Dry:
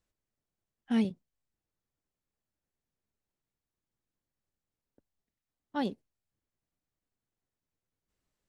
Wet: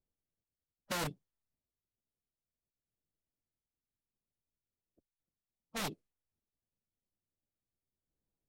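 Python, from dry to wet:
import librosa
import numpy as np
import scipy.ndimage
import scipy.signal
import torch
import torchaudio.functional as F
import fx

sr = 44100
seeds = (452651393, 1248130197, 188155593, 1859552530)

y = (np.mod(10.0 ** (26.5 / 20.0) * x + 1.0, 2.0) - 1.0) / 10.0 ** (26.5 / 20.0)
y = fx.env_lowpass(y, sr, base_hz=660.0, full_db=-35.5)
y = fx.pitch_keep_formants(y, sr, semitones=-4.5)
y = y * 10.0 ** (-3.5 / 20.0)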